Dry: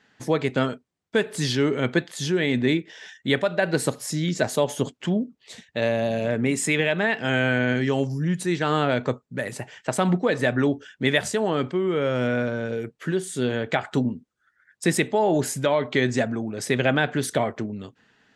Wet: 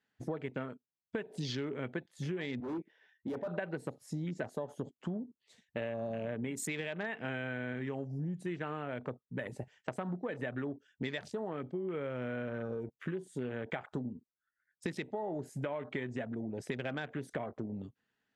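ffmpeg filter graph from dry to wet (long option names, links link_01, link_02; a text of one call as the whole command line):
ffmpeg -i in.wav -filter_complex "[0:a]asettb=1/sr,asplit=3[link_01][link_02][link_03];[link_01]atrim=end=2.604[link_04];[link_02]atrim=start=2.6:end=3.48,asetpts=PTS-STARTPTS,afade=type=in:duration=0.004:curve=qsin,afade=type=out:start_time=0.876:duration=0.004:curve=qsin,highpass=200,lowpass=2300,asoftclip=type=hard:threshold=-26.5dB[link_05];[link_03]atrim=start=3.476[link_06];[link_04][link_05]acrossfade=duration=0.004:curve1=hsin:curve2=qsin[link_07];[link_07][link_06]acrossfade=duration=0.004:curve1=qsin:curve2=hsin,afwtdn=0.0224,acompressor=threshold=-29dB:ratio=10,volume=-5dB" out.wav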